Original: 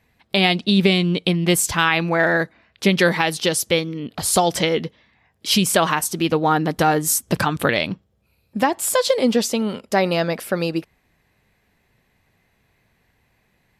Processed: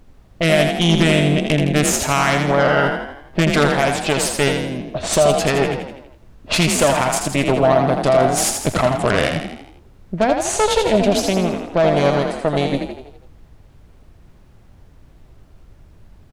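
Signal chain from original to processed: added harmonics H 6 -13 dB, 7 -44 dB, 8 -28 dB, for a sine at -3.5 dBFS; bell 740 Hz +14 dB 0.21 oct; limiter -5.5 dBFS, peak gain reduction 8.5 dB; low-pass opened by the level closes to 390 Hz, open at -16 dBFS; wide varispeed 0.845×; added noise brown -46 dBFS; on a send: frequency-shifting echo 82 ms, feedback 51%, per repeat +38 Hz, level -5.5 dB

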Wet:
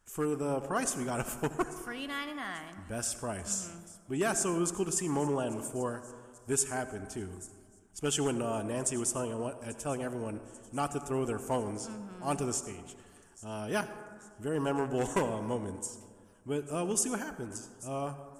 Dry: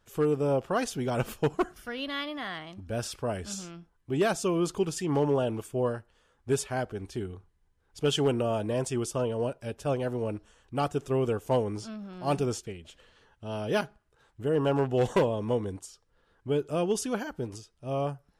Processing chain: ten-band EQ 125 Hz -8 dB, 500 Hz -8 dB, 4000 Hz -11 dB, 8000 Hz +11 dB; thin delay 0.84 s, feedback 55%, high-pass 5200 Hz, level -17.5 dB; on a send at -11 dB: reverb RT60 1.9 s, pre-delay 63 ms

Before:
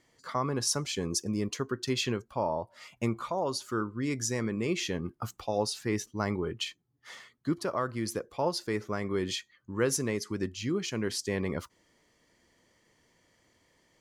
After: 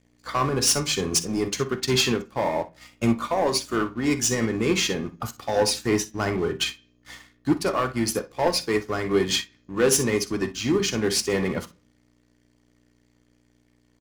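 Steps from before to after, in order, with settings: HPF 79 Hz 24 dB/oct; high shelf 4300 Hz +4 dB; hum 60 Hz, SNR 18 dB; low shelf 130 Hz -6 dB; sample leveller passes 3; harmoniser -12 st -17 dB; early reflections 47 ms -14 dB, 60 ms -14 dB; on a send at -6.5 dB: reverb RT60 0.45 s, pre-delay 3 ms; on the sum: upward expander 1.5:1, over -38 dBFS

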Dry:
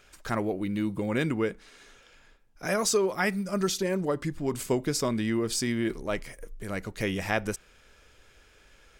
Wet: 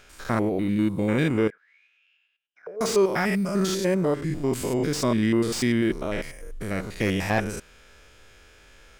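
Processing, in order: stepped spectrum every 0.1 s; 1.5–2.81 auto-wah 450–3200 Hz, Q 15, down, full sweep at -32.5 dBFS; slew limiter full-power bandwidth 100 Hz; gain +6.5 dB

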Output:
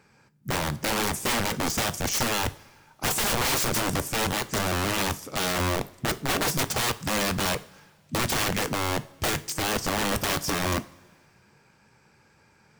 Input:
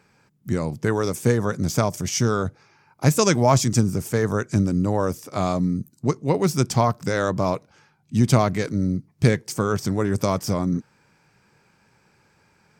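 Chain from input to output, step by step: wrapped overs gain 20 dB; two-slope reverb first 0.41 s, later 2 s, from -18 dB, DRR 12 dB

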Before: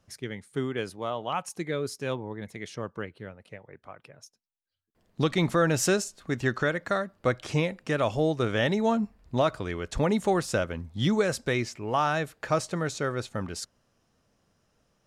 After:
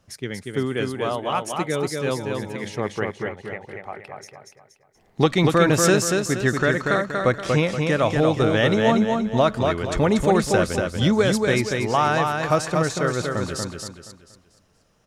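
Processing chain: 2.66–5.26 thirty-one-band EQ 400 Hz +7 dB, 800 Hz +11 dB, 2000 Hz +9 dB; feedback echo 0.237 s, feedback 38%, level -4 dB; gain +5.5 dB

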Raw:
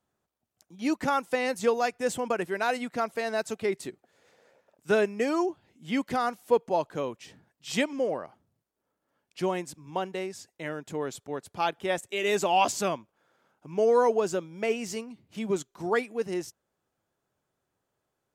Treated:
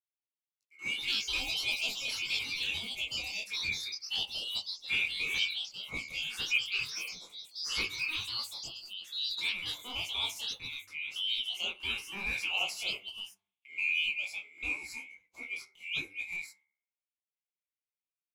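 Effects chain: band-swap scrambler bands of 2000 Hz; flange 0.11 Hz, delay 7.7 ms, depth 8.2 ms, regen -62%; gate -60 dBFS, range -18 dB; echoes that change speed 0.222 s, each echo +4 st, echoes 3; LFO notch square 0.72 Hz 640–1700 Hz; de-hum 98.16 Hz, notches 23; detuned doubles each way 58 cents

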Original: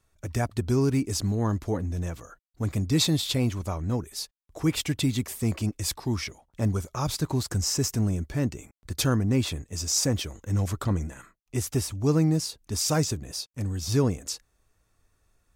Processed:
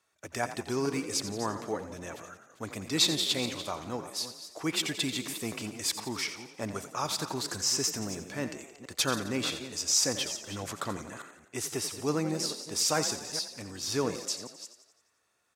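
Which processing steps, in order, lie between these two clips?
reverse delay 0.216 s, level -12 dB; weighting filter A; on a send: frequency-shifting echo 87 ms, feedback 57%, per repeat +36 Hz, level -12 dB

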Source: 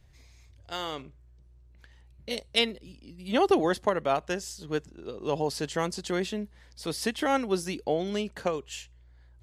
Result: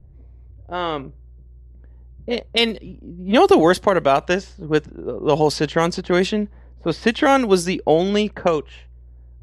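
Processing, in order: low-pass opened by the level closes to 420 Hz, open at -23 dBFS; maximiser +14.5 dB; gain -2.5 dB

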